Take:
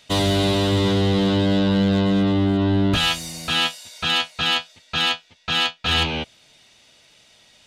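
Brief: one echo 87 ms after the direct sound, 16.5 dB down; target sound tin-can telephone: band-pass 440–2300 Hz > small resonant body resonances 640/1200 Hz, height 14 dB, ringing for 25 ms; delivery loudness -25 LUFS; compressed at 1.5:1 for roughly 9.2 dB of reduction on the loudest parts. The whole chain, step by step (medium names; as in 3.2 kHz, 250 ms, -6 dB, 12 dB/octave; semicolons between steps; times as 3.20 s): compression 1.5:1, threshold -42 dBFS; band-pass 440–2300 Hz; delay 87 ms -16.5 dB; small resonant body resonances 640/1200 Hz, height 14 dB, ringing for 25 ms; trim +5 dB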